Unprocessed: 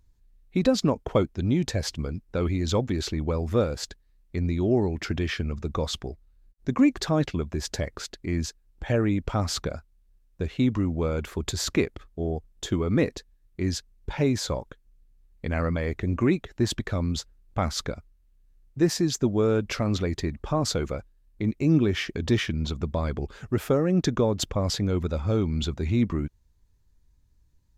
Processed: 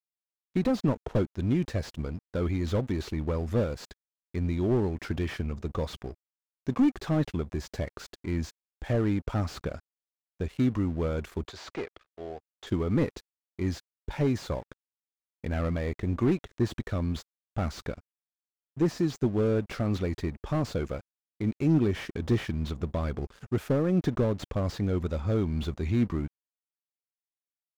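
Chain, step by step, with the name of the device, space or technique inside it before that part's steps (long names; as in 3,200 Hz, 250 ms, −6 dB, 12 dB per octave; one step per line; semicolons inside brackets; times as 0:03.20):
early transistor amplifier (dead-zone distortion −46.5 dBFS; slew-rate limiting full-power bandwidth 44 Hz)
0:11.47–0:12.67: three-way crossover with the lows and the highs turned down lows −17 dB, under 450 Hz, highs −13 dB, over 6,200 Hz
level −2 dB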